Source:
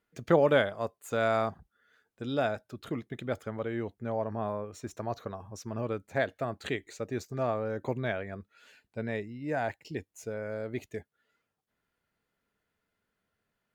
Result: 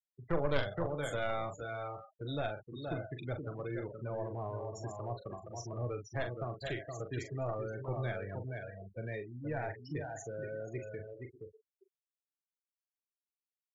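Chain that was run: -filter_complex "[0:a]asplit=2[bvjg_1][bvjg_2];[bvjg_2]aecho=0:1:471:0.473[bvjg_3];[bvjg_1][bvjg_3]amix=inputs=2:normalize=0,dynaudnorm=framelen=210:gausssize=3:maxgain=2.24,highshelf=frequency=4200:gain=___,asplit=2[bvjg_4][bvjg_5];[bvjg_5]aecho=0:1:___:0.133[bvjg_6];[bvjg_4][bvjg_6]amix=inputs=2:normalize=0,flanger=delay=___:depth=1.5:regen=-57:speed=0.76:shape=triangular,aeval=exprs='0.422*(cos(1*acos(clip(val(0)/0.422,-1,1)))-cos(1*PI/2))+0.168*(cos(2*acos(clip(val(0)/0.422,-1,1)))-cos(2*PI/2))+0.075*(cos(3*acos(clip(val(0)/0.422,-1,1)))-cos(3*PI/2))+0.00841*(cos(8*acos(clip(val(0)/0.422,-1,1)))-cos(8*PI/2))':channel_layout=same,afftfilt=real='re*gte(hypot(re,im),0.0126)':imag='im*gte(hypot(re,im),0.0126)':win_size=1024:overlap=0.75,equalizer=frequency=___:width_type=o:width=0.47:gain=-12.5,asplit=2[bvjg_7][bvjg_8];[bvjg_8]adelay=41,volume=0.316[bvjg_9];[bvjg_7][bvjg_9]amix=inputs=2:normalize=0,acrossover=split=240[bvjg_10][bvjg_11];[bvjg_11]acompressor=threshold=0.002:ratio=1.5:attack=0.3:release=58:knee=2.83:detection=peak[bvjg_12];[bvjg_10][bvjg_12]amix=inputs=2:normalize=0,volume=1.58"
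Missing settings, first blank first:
8.5, 594, 5.3, 220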